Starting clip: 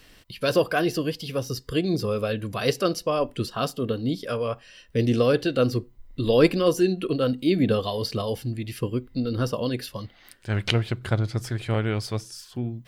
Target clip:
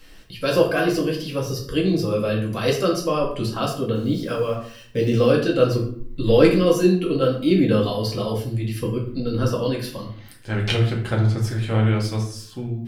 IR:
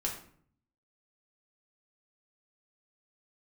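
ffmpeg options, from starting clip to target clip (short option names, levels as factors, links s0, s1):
-filter_complex "[0:a]asplit=2[s0][s1];[s1]volume=4.22,asoftclip=hard,volume=0.237,volume=0.299[s2];[s0][s2]amix=inputs=2:normalize=0,asettb=1/sr,asplit=3[s3][s4][s5];[s3]atrim=end=3.954[s6];[s4]atrim=start=3.95:end=5.31,asetpts=PTS-STARTPTS,afade=t=in:d=0.004:c=qsin,afade=t=out:st=1.356:d=0.004:c=qsin,acrusher=bits=7:mix=0:aa=0.5[s7];[s5]atrim=start=5.306[s8];[s6][s7]acrossfade=d=0.004:c1=hsin:c2=qsin[s9];[s9][s8]acrossfade=d=0.004:c1=qsin:c2=hsin[s10];[1:a]atrim=start_sample=2205[s11];[s10][s11]afir=irnorm=-1:irlink=0,volume=0.75"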